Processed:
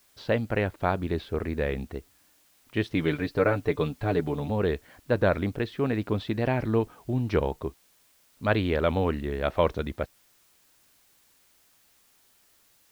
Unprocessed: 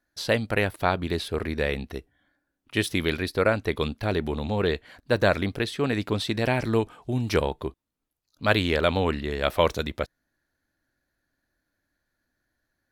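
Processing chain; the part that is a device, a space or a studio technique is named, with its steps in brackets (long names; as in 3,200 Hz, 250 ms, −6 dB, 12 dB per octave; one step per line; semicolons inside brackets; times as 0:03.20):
cassette deck with a dirty head (head-to-tape spacing loss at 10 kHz 29 dB; tape wow and flutter; white noise bed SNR 34 dB)
0:02.95–0:04.50: comb filter 6.8 ms, depth 68%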